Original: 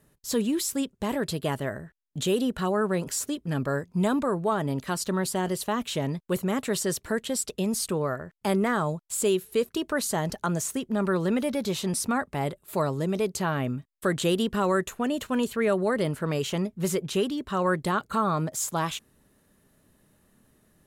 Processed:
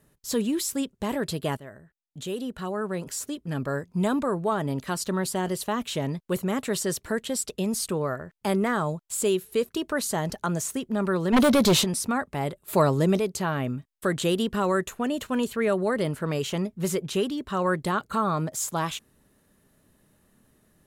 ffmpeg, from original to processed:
-filter_complex "[0:a]asplit=3[a][b][c];[a]afade=t=out:st=11.32:d=0.02[d];[b]aeval=exprs='0.188*sin(PI/2*2.82*val(0)/0.188)':c=same,afade=t=in:st=11.32:d=0.02,afade=t=out:st=11.83:d=0.02[e];[c]afade=t=in:st=11.83:d=0.02[f];[d][e][f]amix=inputs=3:normalize=0,asplit=3[g][h][i];[g]afade=t=out:st=12.66:d=0.02[j];[h]acontrast=50,afade=t=in:st=12.66:d=0.02,afade=t=out:st=13.18:d=0.02[k];[i]afade=t=in:st=13.18:d=0.02[l];[j][k][l]amix=inputs=3:normalize=0,asplit=2[m][n];[m]atrim=end=1.57,asetpts=PTS-STARTPTS,afade=t=out:st=1.566:d=0.004:c=hsin:silence=0.211349[o];[n]atrim=start=1.57,asetpts=PTS-STARTPTS,afade=t=in:d=2.57:silence=0.211349[p];[o][p]concat=n=2:v=0:a=1"

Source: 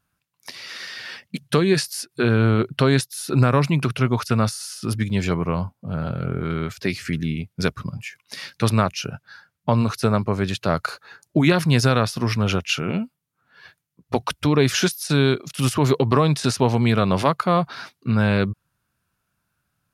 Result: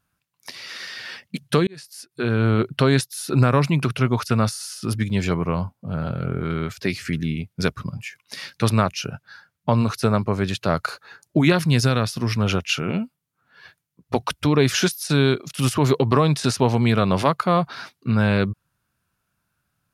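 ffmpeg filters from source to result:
-filter_complex "[0:a]asettb=1/sr,asplit=3[a][b][c];[a]atrim=end=11.574[d];[b]atrim=start=11.57:end=12.36,asetpts=PTS-STARTPTS,afade=t=in:d=0.004:c=qsin,afade=t=out:st=0.786:d=0.004:c=qsin,equalizer=f=860:w=0.54:g=-4.5[e];[c]atrim=start=12.356[f];[d][e]acrossfade=d=0.004:c1=hsin:c2=qsin[g];[g][f]acrossfade=d=0.004:c1=qsin:c2=hsin,asplit=2[h][i];[h]atrim=end=1.67,asetpts=PTS-STARTPTS,afade=t=out:st=1.666:d=0.004:c=hsin[j];[i]atrim=start=1.67,asetpts=PTS-STARTPTS,afade=t=in:d=0.92[k];[j][k]concat=n=2:v=0:a=1"

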